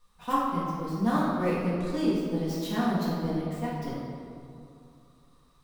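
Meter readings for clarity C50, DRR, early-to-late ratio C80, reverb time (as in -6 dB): -2.0 dB, -9.5 dB, 0.5 dB, 2.6 s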